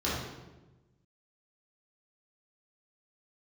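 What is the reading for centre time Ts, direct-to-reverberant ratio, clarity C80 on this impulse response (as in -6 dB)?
76 ms, -9.5 dB, 3.0 dB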